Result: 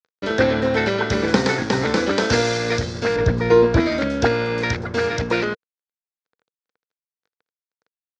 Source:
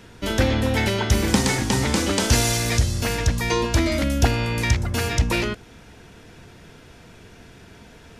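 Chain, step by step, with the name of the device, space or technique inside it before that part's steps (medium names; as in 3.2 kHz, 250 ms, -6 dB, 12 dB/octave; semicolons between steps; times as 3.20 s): blown loudspeaker (crossover distortion -35.5 dBFS; cabinet simulation 140–5100 Hz, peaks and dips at 470 Hz +9 dB, 1.5 kHz +7 dB, 2.9 kHz -7 dB); 3.16–3.80 s: tilt EQ -2.5 dB/octave; trim +2.5 dB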